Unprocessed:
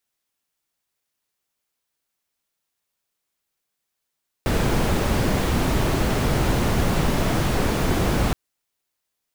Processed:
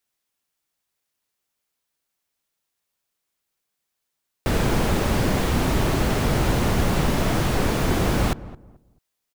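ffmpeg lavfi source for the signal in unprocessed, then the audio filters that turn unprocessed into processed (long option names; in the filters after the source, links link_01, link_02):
-f lavfi -i "anoisesrc=color=brown:amplitude=0.468:duration=3.87:sample_rate=44100:seed=1"
-filter_complex "[0:a]asplit=2[link_01][link_02];[link_02]adelay=218,lowpass=frequency=920:poles=1,volume=-16dB,asplit=2[link_03][link_04];[link_04]adelay=218,lowpass=frequency=920:poles=1,volume=0.28,asplit=2[link_05][link_06];[link_06]adelay=218,lowpass=frequency=920:poles=1,volume=0.28[link_07];[link_01][link_03][link_05][link_07]amix=inputs=4:normalize=0"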